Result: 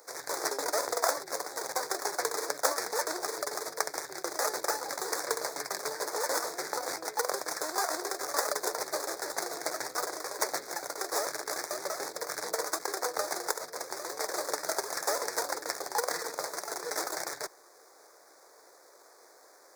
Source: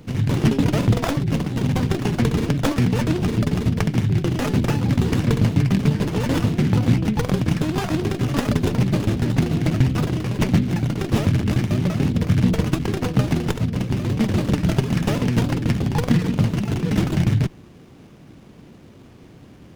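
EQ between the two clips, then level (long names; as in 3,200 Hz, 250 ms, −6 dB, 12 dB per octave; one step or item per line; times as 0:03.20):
inverse Chebyshev high-pass filter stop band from 240 Hz, stop band 40 dB
Butterworth band-reject 2,900 Hz, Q 0.96
high-shelf EQ 2,300 Hz +9.5 dB
−3.0 dB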